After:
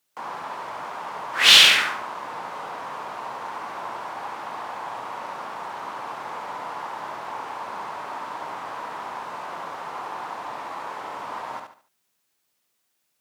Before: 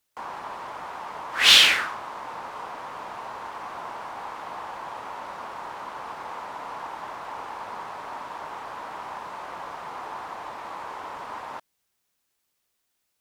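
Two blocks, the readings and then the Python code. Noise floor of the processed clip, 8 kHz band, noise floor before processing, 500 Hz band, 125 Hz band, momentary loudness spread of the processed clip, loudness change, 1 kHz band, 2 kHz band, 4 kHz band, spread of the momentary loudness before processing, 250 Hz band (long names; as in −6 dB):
−74 dBFS, +3.0 dB, −77 dBFS, +3.0 dB, +2.0 dB, 14 LU, +2.5 dB, +3.0 dB, +2.5 dB, +2.5 dB, 13 LU, +2.5 dB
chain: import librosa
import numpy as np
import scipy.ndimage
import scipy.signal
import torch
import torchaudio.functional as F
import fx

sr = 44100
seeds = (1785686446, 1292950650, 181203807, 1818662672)

y = scipy.signal.sosfilt(scipy.signal.butter(4, 100.0, 'highpass', fs=sr, output='sos'), x)
y = fx.echo_feedback(y, sr, ms=72, feedback_pct=32, wet_db=-5.0)
y = F.gain(torch.from_numpy(y), 1.5).numpy()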